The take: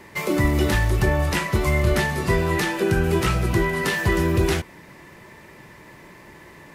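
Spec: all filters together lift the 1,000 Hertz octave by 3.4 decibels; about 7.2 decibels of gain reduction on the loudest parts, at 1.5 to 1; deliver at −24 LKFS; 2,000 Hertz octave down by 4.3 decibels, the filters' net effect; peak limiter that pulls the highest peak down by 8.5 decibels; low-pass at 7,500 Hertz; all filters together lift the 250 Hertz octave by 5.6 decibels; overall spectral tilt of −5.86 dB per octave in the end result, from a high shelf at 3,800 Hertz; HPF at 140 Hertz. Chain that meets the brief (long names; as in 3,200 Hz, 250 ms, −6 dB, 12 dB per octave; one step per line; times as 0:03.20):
high-pass filter 140 Hz
low-pass filter 7,500 Hz
parametric band 250 Hz +9 dB
parametric band 1,000 Hz +5 dB
parametric band 2,000 Hz −5.5 dB
high-shelf EQ 3,800 Hz −4.5 dB
downward compressor 1.5 to 1, threshold −34 dBFS
level +6.5 dB
brickwall limiter −15.5 dBFS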